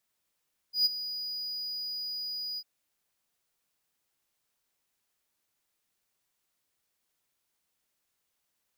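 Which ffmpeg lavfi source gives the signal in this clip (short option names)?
-f lavfi -i "aevalsrc='0.126*(1-4*abs(mod(4920*t+0.25,1)-0.5))':d=1.901:s=44100,afade=t=in:d=0.125,afade=t=out:st=0.125:d=0.022:silence=0.211,afade=t=out:st=1.85:d=0.051"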